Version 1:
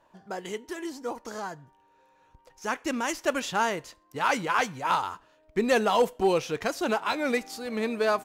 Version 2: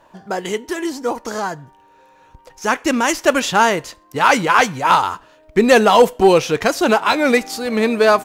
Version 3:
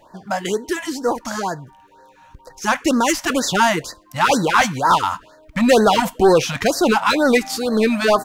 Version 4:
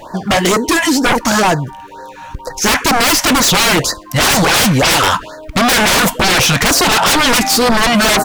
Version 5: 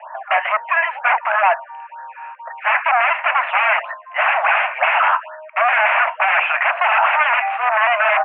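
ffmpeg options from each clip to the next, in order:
ffmpeg -i in.wav -af "acontrast=62,volume=6dB" out.wav
ffmpeg -i in.wav -af "acontrast=86,afftfilt=real='re*(1-between(b*sr/1024,360*pow(2800/360,0.5+0.5*sin(2*PI*2.1*pts/sr))/1.41,360*pow(2800/360,0.5+0.5*sin(2*PI*2.1*pts/sr))*1.41))':imag='im*(1-between(b*sr/1024,360*pow(2800/360,0.5+0.5*sin(2*PI*2.1*pts/sr))/1.41,360*pow(2800/360,0.5+0.5*sin(2*PI*2.1*pts/sr))*1.41))':win_size=1024:overlap=0.75,volume=-5dB" out.wav
ffmpeg -i in.wav -af "aeval=exprs='0.631*sin(PI/2*7.08*val(0)/0.631)':channel_layout=same,volume=-4dB" out.wav
ffmpeg -i in.wav -af "asuperpass=centerf=1300:order=20:qfactor=0.62,volume=-1dB" out.wav

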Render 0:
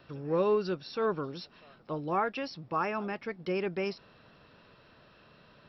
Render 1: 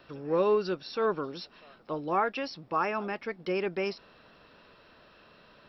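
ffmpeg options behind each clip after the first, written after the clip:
ffmpeg -i in.wav -af "equalizer=frequency=120:width=1.1:gain=-8.5,volume=2.5dB" out.wav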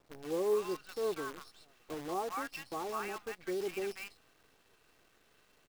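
ffmpeg -i in.wav -filter_complex "[0:a]aecho=1:1:2.6:0.43,acrossover=split=1000|4200[link_01][link_02][link_03];[link_03]adelay=60[link_04];[link_02]adelay=190[link_05];[link_01][link_05][link_04]amix=inputs=3:normalize=0,acrusher=bits=7:dc=4:mix=0:aa=0.000001,volume=-7.5dB" out.wav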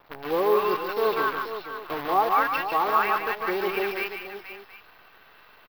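ffmpeg -i in.wav -filter_complex "[0:a]firequalizer=gain_entry='entry(320,0);entry(910,12);entry(4500,3);entry(8600,-28);entry(13000,8)':delay=0.05:min_phase=1,asplit=2[link_01][link_02];[link_02]aecho=0:1:149|480|727:0.473|0.299|0.141[link_03];[link_01][link_03]amix=inputs=2:normalize=0,volume=6dB" out.wav

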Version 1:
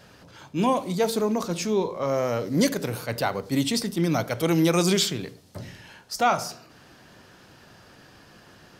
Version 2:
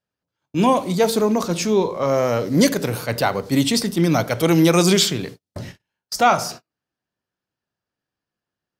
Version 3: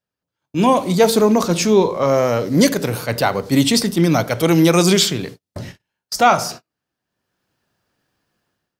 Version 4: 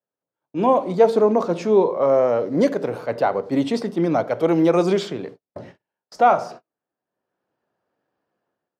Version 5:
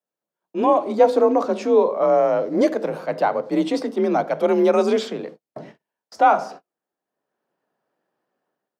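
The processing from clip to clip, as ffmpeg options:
ffmpeg -i in.wav -af "agate=range=-41dB:threshold=-40dB:ratio=16:detection=peak,volume=6dB" out.wav
ffmpeg -i in.wav -af "dynaudnorm=framelen=470:gausssize=3:maxgain=16dB,volume=-1dB" out.wav
ffmpeg -i in.wav -af "bandpass=frequency=570:width_type=q:width=0.96:csg=0" out.wav
ffmpeg -i in.wav -af "afreqshift=41" out.wav

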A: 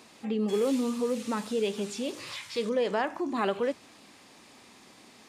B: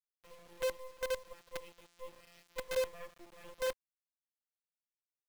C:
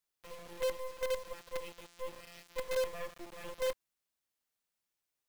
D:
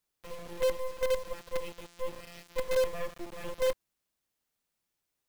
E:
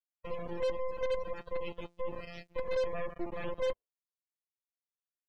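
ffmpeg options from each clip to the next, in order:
ffmpeg -i in.wav -filter_complex "[0:a]afftfilt=real='hypot(re,im)*cos(PI*b)':imag='0':win_size=1024:overlap=0.75,asplit=3[link_01][link_02][link_03];[link_01]bandpass=frequency=530:width_type=q:width=8,volume=0dB[link_04];[link_02]bandpass=frequency=1840:width_type=q:width=8,volume=-6dB[link_05];[link_03]bandpass=frequency=2480:width_type=q:width=8,volume=-9dB[link_06];[link_04][link_05][link_06]amix=inputs=3:normalize=0,acrusher=bits=6:dc=4:mix=0:aa=0.000001,volume=-3.5dB" out.wav
ffmpeg -i in.wav -af "asoftclip=type=tanh:threshold=-36dB,volume=8dB" out.wav
ffmpeg -i in.wav -af "lowshelf=frequency=480:gain=6,volume=3dB" out.wav
ffmpeg -i in.wav -af "alimiter=level_in=6.5dB:limit=-24dB:level=0:latency=1:release=69,volume=-6.5dB,agate=range=-33dB:threshold=-53dB:ratio=3:detection=peak,afftdn=noise_reduction=30:noise_floor=-50,volume=5dB" out.wav

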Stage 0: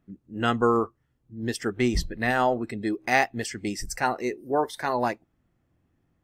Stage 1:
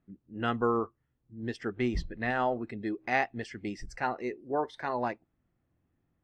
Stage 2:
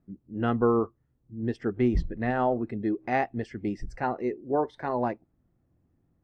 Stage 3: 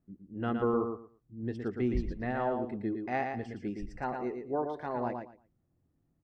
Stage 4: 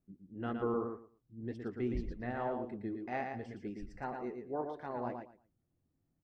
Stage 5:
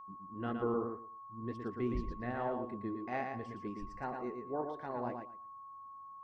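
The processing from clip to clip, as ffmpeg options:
ffmpeg -i in.wav -af "lowpass=3400,volume=-6dB" out.wav
ffmpeg -i in.wav -af "tiltshelf=frequency=1200:gain=7" out.wav
ffmpeg -i in.wav -af "aecho=1:1:115|230|345:0.531|0.101|0.0192,volume=-6.5dB" out.wav
ffmpeg -i in.wav -af "flanger=delay=1.4:depth=9.9:regen=76:speed=1.9:shape=triangular,volume=-1dB" out.wav
ffmpeg -i in.wav -af "aeval=exprs='val(0)+0.00398*sin(2*PI*1100*n/s)':channel_layout=same" out.wav

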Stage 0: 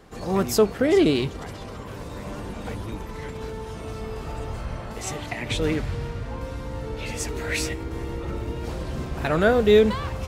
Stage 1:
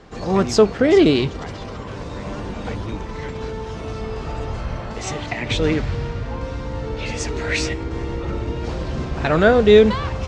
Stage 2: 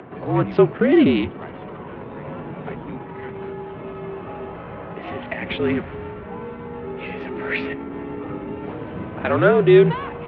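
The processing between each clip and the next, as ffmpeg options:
ffmpeg -i in.wav -af "lowpass=frequency=6700:width=0.5412,lowpass=frequency=6700:width=1.3066,volume=5dB" out.wav
ffmpeg -i in.wav -af "adynamicsmooth=sensitivity=3:basefreq=1800,highpass=frequency=170:width_type=q:width=0.5412,highpass=frequency=170:width_type=q:width=1.307,lowpass=frequency=3200:width_type=q:width=0.5176,lowpass=frequency=3200:width_type=q:width=0.7071,lowpass=frequency=3200:width_type=q:width=1.932,afreqshift=-50,acompressor=mode=upward:threshold=-31dB:ratio=2.5,volume=-1dB" out.wav

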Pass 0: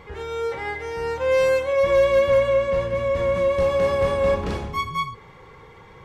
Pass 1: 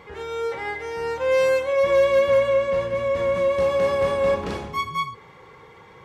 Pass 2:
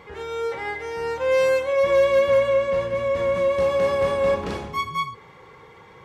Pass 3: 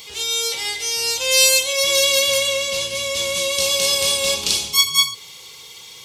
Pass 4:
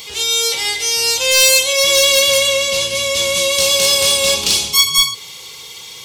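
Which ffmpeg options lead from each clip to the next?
ffmpeg -i in.wav -af "highpass=frequency=160:poles=1" out.wav
ffmpeg -i in.wav -af anull out.wav
ffmpeg -i in.wav -af "aexciter=amount=10.8:drive=8.1:freq=2700,highshelf=frequency=2600:gain=9,volume=-6dB" out.wav
ffmpeg -i in.wav -af "aeval=exprs='0.891*(cos(1*acos(clip(val(0)/0.891,-1,1)))-cos(1*PI/2))+0.224*(cos(5*acos(clip(val(0)/0.891,-1,1)))-cos(5*PI/2))':channel_layout=same,volume=-1dB" out.wav

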